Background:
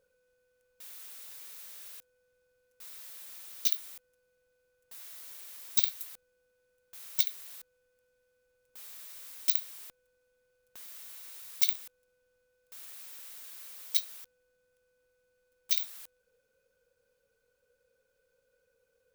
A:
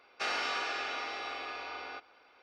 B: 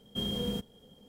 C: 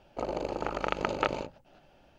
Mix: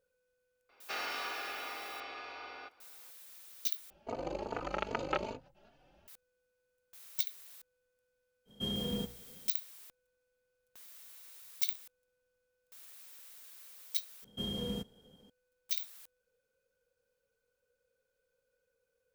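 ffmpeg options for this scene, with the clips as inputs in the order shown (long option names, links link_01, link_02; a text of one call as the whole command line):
ffmpeg -i bed.wav -i cue0.wav -i cue1.wav -i cue2.wav -filter_complex "[2:a]asplit=2[link_01][link_02];[0:a]volume=-6.5dB[link_03];[3:a]asplit=2[link_04][link_05];[link_05]adelay=3.4,afreqshift=2.5[link_06];[link_04][link_06]amix=inputs=2:normalize=1[link_07];[link_01]bandreject=frequency=60.19:width_type=h:width=4,bandreject=frequency=120.38:width_type=h:width=4,bandreject=frequency=180.57:width_type=h:width=4,bandreject=frequency=240.76:width_type=h:width=4,bandreject=frequency=300.95:width_type=h:width=4,bandreject=frequency=361.14:width_type=h:width=4,bandreject=frequency=421.33:width_type=h:width=4,bandreject=frequency=481.52:width_type=h:width=4,bandreject=frequency=541.71:width_type=h:width=4,bandreject=frequency=601.9:width_type=h:width=4,bandreject=frequency=662.09:width_type=h:width=4,bandreject=frequency=722.28:width_type=h:width=4,bandreject=frequency=782.47:width_type=h:width=4,bandreject=frequency=842.66:width_type=h:width=4,bandreject=frequency=902.85:width_type=h:width=4,bandreject=frequency=963.04:width_type=h:width=4,bandreject=frequency=1023.23:width_type=h:width=4,bandreject=frequency=1083.42:width_type=h:width=4,bandreject=frequency=1143.61:width_type=h:width=4,bandreject=frequency=1203.8:width_type=h:width=4,bandreject=frequency=1263.99:width_type=h:width=4,bandreject=frequency=1324.18:width_type=h:width=4,bandreject=frequency=1384.37:width_type=h:width=4,bandreject=frequency=1444.56:width_type=h:width=4,bandreject=frequency=1504.75:width_type=h:width=4,bandreject=frequency=1564.94:width_type=h:width=4,bandreject=frequency=1625.13:width_type=h:width=4[link_08];[link_03]asplit=2[link_09][link_10];[link_09]atrim=end=3.904[link_11];[link_07]atrim=end=2.18,asetpts=PTS-STARTPTS,volume=-2.5dB[link_12];[link_10]atrim=start=6.076[link_13];[1:a]atrim=end=2.42,asetpts=PTS-STARTPTS,volume=-5dB,afade=type=in:duration=0.004:curve=hsin,afade=type=out:start_time=2.416:duration=0.004:curve=hsin,adelay=690[link_14];[link_08]atrim=end=1.08,asetpts=PTS-STARTPTS,volume=-2.5dB,afade=type=in:duration=0.05,afade=type=out:start_time=1.03:duration=0.05,adelay=8450[link_15];[link_02]atrim=end=1.08,asetpts=PTS-STARTPTS,volume=-4.5dB,afade=type=in:duration=0.004:curve=hsin,afade=type=out:start_time=1.076:duration=0.004:curve=hsin,adelay=14220[link_16];[link_11][link_12]acrossfade=duration=0.004:curve1=hsin:curve2=hsin[link_17];[link_17][link_13]acrossfade=duration=0.004:curve1=hsin:curve2=hsin[link_18];[link_18][link_14][link_15][link_16]amix=inputs=4:normalize=0" out.wav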